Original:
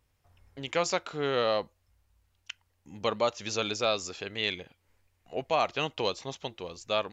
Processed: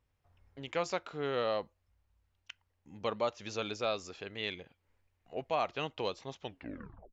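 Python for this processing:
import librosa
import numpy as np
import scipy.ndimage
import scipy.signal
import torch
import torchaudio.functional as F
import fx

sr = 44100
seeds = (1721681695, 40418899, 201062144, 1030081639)

y = fx.tape_stop_end(x, sr, length_s=0.71)
y = fx.high_shelf(y, sr, hz=5000.0, db=-11.0)
y = y * librosa.db_to_amplitude(-5.0)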